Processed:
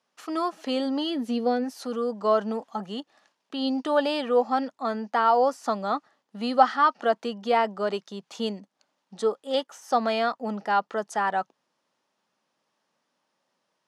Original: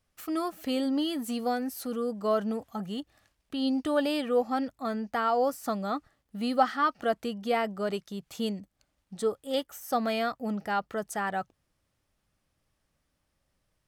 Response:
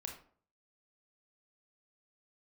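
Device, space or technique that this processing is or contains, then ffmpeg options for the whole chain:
television speaker: -filter_complex "[0:a]highpass=frequency=220:width=0.5412,highpass=frequency=220:width=1.3066,equalizer=frequency=300:width_type=q:width=4:gain=-5,equalizer=frequency=940:width_type=q:width=4:gain=7,equalizer=frequency=2200:width_type=q:width=4:gain=-3,equalizer=frequency=8200:width_type=q:width=4:gain=-8,lowpass=frequency=8600:width=0.5412,lowpass=frequency=8600:width=1.3066,asplit=3[link_01][link_02][link_03];[link_01]afade=type=out:start_time=1.09:duration=0.02[link_04];[link_02]equalizer=frequency=250:width_type=o:width=1:gain=4,equalizer=frequency=500:width_type=o:width=1:gain=4,equalizer=frequency=1000:width_type=o:width=1:gain=-9,equalizer=frequency=8000:width_type=o:width=1:gain=-10,afade=type=in:start_time=1.09:duration=0.02,afade=type=out:start_time=1.63:duration=0.02[link_05];[link_03]afade=type=in:start_time=1.63:duration=0.02[link_06];[link_04][link_05][link_06]amix=inputs=3:normalize=0,volume=4dB"

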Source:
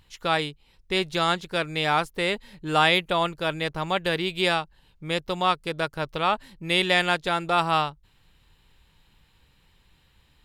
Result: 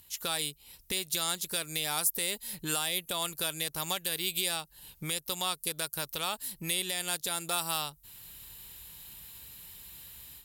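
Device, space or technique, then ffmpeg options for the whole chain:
FM broadcast chain: -filter_complex "[0:a]highpass=41,dynaudnorm=framelen=170:gausssize=3:maxgain=10dB,acrossover=split=920|3900[link_01][link_02][link_03];[link_01]acompressor=threshold=-30dB:ratio=4[link_04];[link_02]acompressor=threshold=-31dB:ratio=4[link_05];[link_03]acompressor=threshold=-31dB:ratio=4[link_06];[link_04][link_05][link_06]amix=inputs=3:normalize=0,aemphasis=mode=production:type=50fm,alimiter=limit=-14dB:level=0:latency=1:release=477,asoftclip=type=hard:threshold=-17.5dB,lowpass=frequency=15000:width=0.5412,lowpass=frequency=15000:width=1.3066,aemphasis=mode=production:type=50fm,volume=-6dB"

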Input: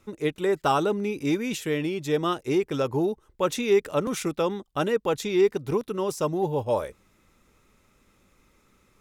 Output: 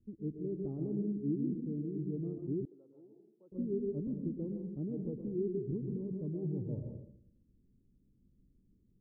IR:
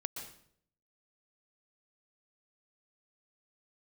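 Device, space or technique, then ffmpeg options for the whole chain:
next room: -filter_complex "[0:a]lowpass=frequency=290:width=0.5412,lowpass=frequency=290:width=1.3066[link_01];[1:a]atrim=start_sample=2205[link_02];[link_01][link_02]afir=irnorm=-1:irlink=0,asettb=1/sr,asplit=3[link_03][link_04][link_05];[link_03]atrim=end=2.654[link_06];[link_04]atrim=start=2.65:end=3.52,asetpts=PTS-STARTPTS,afade=type=in:duration=0.004:curve=qsin,afade=type=out:start_time=0.866:duration=0.004:curve=qsin,highpass=1100[link_07];[link_05]atrim=start=3.516[link_08];[link_06][link_07]acrossfade=duration=0.004:curve1=hsin:curve2=qsin[link_09];[link_09][link_08]acrossfade=duration=0.004:curve1=qsin:curve2=hsin,volume=-4dB"

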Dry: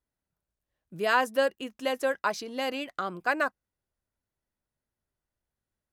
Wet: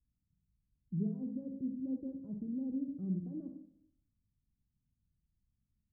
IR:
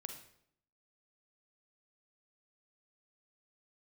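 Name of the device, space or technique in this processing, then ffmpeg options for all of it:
club heard from the street: -filter_complex "[0:a]alimiter=limit=-22.5dB:level=0:latency=1:release=33,lowpass=frequency=210:width=0.5412,lowpass=frequency=210:width=1.3066[link_01];[1:a]atrim=start_sample=2205[link_02];[link_01][link_02]afir=irnorm=-1:irlink=0,volume=13dB"

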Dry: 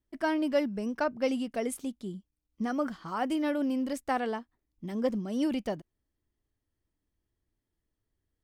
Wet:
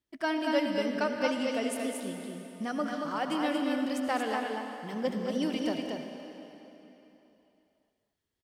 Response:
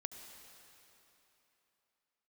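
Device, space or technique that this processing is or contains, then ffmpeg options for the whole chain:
stadium PA: -filter_complex "[0:a]highpass=frequency=150:poles=1,equalizer=frequency=3400:width_type=o:width=1.9:gain=6,aecho=1:1:198.3|230.3:0.282|0.631[link_01];[1:a]atrim=start_sample=2205[link_02];[link_01][link_02]afir=irnorm=-1:irlink=0,volume=1.5dB"

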